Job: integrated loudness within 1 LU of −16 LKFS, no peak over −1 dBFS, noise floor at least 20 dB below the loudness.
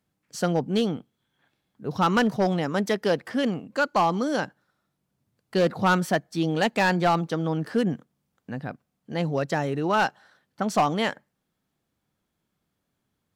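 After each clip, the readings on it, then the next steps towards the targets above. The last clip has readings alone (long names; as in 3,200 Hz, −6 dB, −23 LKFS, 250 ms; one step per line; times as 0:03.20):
share of clipped samples 0.8%; peaks flattened at −15.0 dBFS; integrated loudness −25.0 LKFS; sample peak −15.0 dBFS; target loudness −16.0 LKFS
→ clipped peaks rebuilt −15 dBFS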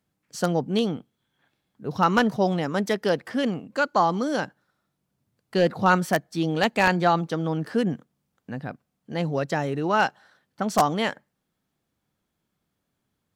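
share of clipped samples 0.0%; integrated loudness −24.5 LKFS; sample peak −6.0 dBFS; target loudness −16.0 LKFS
→ level +8.5 dB
brickwall limiter −1 dBFS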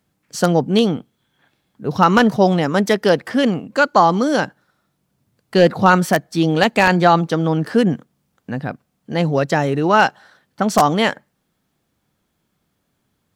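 integrated loudness −16.5 LKFS; sample peak −1.0 dBFS; background noise floor −70 dBFS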